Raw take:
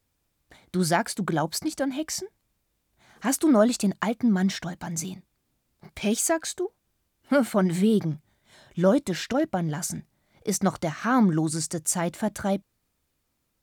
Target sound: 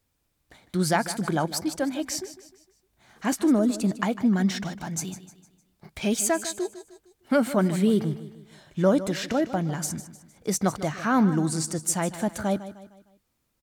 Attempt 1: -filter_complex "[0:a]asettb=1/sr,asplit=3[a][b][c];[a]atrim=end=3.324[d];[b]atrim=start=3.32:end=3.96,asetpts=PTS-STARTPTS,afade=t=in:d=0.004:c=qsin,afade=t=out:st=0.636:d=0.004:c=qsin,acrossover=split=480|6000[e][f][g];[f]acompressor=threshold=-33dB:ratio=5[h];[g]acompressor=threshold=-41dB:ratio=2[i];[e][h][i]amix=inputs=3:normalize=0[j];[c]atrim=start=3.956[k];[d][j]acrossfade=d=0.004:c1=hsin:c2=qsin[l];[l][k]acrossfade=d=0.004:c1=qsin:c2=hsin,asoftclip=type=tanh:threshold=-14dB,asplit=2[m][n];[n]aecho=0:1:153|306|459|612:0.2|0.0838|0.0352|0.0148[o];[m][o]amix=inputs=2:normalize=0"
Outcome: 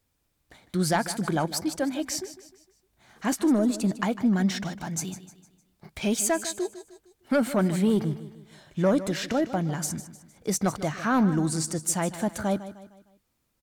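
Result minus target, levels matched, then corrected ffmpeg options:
soft clip: distortion +17 dB
-filter_complex "[0:a]asettb=1/sr,asplit=3[a][b][c];[a]atrim=end=3.324[d];[b]atrim=start=3.32:end=3.96,asetpts=PTS-STARTPTS,afade=t=in:d=0.004:c=qsin,afade=t=out:st=0.636:d=0.004:c=qsin,acrossover=split=480|6000[e][f][g];[f]acompressor=threshold=-33dB:ratio=5[h];[g]acompressor=threshold=-41dB:ratio=2[i];[e][h][i]amix=inputs=3:normalize=0[j];[c]atrim=start=3.956[k];[d][j]acrossfade=d=0.004:c1=hsin:c2=qsin[l];[l][k]acrossfade=d=0.004:c1=qsin:c2=hsin,asoftclip=type=tanh:threshold=-4dB,asplit=2[m][n];[n]aecho=0:1:153|306|459|612:0.2|0.0838|0.0352|0.0148[o];[m][o]amix=inputs=2:normalize=0"

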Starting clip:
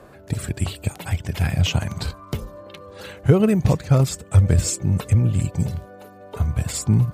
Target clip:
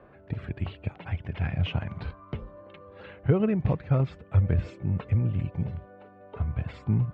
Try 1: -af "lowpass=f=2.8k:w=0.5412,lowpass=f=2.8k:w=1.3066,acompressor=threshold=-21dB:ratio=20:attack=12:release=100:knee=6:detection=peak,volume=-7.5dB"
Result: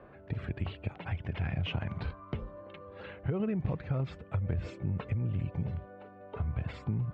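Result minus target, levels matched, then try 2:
compressor: peak gain reduction +13.5 dB
-af "lowpass=f=2.8k:w=0.5412,lowpass=f=2.8k:w=1.3066,volume=-7.5dB"

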